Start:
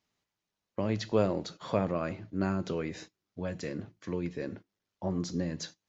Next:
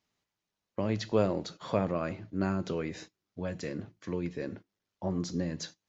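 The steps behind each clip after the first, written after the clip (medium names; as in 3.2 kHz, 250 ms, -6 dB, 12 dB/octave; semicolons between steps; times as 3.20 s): no audible change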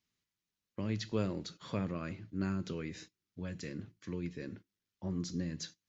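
peaking EQ 700 Hz -12 dB 1.4 oct; trim -2.5 dB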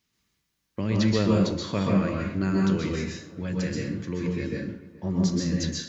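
filtered feedback delay 427 ms, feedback 70%, low-pass 2.3 kHz, level -20.5 dB; plate-style reverb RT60 0.53 s, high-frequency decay 0.8×, pre-delay 115 ms, DRR -2 dB; trim +8.5 dB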